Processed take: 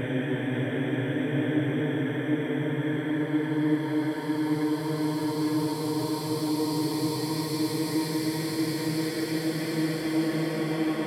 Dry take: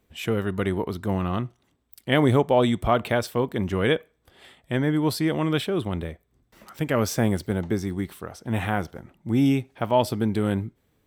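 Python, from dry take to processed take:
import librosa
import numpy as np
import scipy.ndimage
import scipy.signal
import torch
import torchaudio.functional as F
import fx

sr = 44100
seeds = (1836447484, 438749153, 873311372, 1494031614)

y = fx.paulstretch(x, sr, seeds[0], factor=19.0, window_s=0.5, from_s=4.74)
y = fx.hum_notches(y, sr, base_hz=50, count=3)
y = y * librosa.db_to_amplitude(-4.0)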